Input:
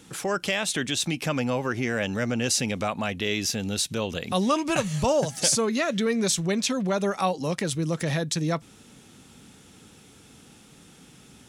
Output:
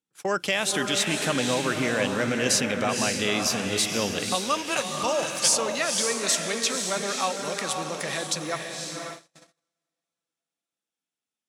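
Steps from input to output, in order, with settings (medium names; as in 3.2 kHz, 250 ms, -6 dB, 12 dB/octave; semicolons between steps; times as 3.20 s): echo that smears into a reverb 524 ms, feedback 43%, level -4 dB; gate -32 dBFS, range -40 dB; high-pass 210 Hz 6 dB/octave, from 4.35 s 960 Hz; trim +1.5 dB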